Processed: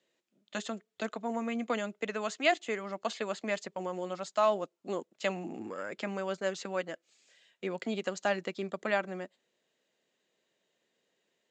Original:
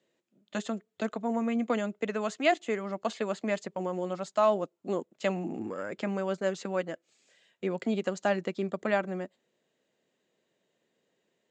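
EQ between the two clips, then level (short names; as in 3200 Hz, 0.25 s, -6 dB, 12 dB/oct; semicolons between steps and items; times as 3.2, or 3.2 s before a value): LPF 6900 Hz 12 dB/oct; tilt +2 dB/oct; -1.5 dB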